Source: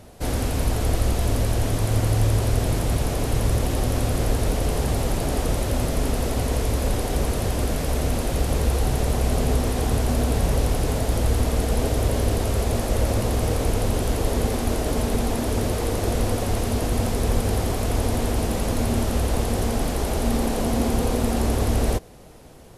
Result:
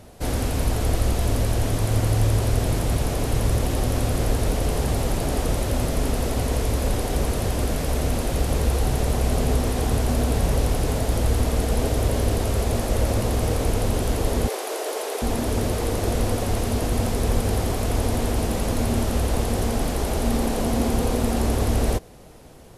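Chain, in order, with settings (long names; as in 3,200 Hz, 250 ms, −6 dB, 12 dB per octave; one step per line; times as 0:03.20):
0:14.48–0:15.22: Butterworth high-pass 360 Hz 48 dB per octave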